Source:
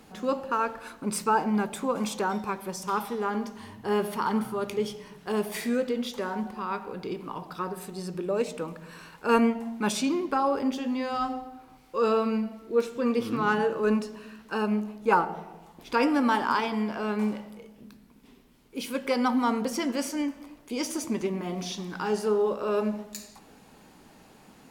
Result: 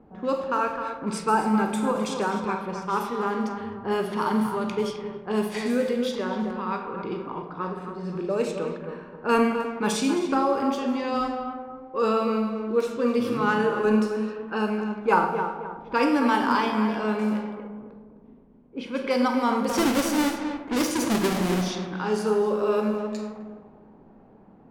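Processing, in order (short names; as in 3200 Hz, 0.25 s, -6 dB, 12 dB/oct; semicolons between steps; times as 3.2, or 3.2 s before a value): 19.69–21.62 half-waves squared off; on a send: tape echo 0.262 s, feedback 42%, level -6.5 dB, low-pass 2100 Hz; on the sum: Schroeder reverb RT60 0.71 s, combs from 33 ms, DRR 5.5 dB; low-pass opened by the level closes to 710 Hz, open at -22 dBFS; gain +1 dB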